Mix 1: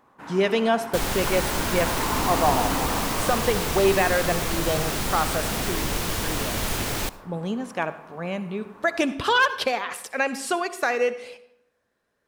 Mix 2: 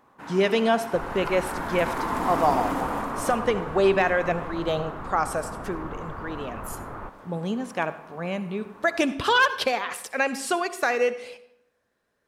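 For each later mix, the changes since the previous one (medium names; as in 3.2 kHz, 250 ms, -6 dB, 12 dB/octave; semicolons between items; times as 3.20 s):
second sound: add four-pole ladder low-pass 1.4 kHz, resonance 50%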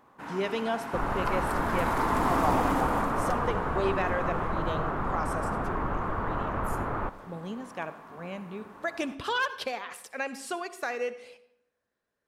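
speech -9.0 dB; second sound +6.0 dB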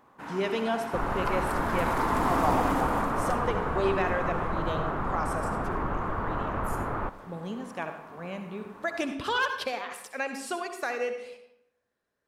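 speech: send +7.5 dB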